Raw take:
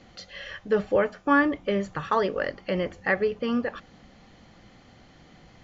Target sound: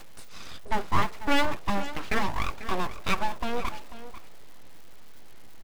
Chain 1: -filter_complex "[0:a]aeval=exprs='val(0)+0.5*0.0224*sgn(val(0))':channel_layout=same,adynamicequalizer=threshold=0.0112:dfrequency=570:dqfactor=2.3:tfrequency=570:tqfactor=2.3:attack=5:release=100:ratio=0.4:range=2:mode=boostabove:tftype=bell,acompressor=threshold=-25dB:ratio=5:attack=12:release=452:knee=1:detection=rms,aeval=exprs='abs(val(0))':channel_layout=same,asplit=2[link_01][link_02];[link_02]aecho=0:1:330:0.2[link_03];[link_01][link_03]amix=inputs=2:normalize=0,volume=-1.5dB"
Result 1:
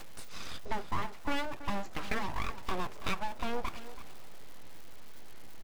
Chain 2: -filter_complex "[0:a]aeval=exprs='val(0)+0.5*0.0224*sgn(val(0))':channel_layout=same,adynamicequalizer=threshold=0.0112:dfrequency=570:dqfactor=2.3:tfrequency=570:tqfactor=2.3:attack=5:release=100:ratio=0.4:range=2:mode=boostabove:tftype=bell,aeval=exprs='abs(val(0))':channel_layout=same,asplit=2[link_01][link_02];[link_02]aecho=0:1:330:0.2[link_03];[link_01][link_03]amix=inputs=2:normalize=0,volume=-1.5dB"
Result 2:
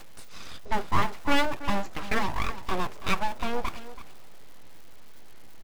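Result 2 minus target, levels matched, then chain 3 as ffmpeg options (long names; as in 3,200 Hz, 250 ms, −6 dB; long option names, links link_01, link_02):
echo 163 ms early
-filter_complex "[0:a]aeval=exprs='val(0)+0.5*0.0224*sgn(val(0))':channel_layout=same,adynamicequalizer=threshold=0.0112:dfrequency=570:dqfactor=2.3:tfrequency=570:tqfactor=2.3:attack=5:release=100:ratio=0.4:range=2:mode=boostabove:tftype=bell,aeval=exprs='abs(val(0))':channel_layout=same,asplit=2[link_01][link_02];[link_02]aecho=0:1:493:0.2[link_03];[link_01][link_03]amix=inputs=2:normalize=0,volume=-1.5dB"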